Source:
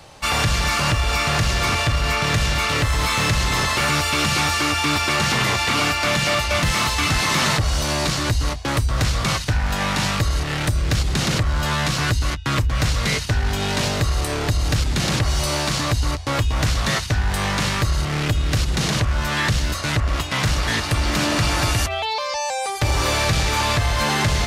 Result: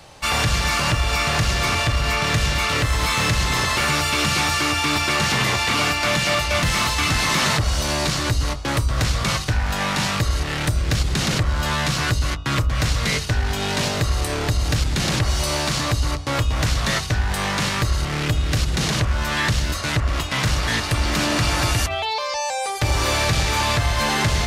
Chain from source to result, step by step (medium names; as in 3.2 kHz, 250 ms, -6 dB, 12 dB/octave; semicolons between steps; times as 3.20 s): de-hum 48.18 Hz, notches 30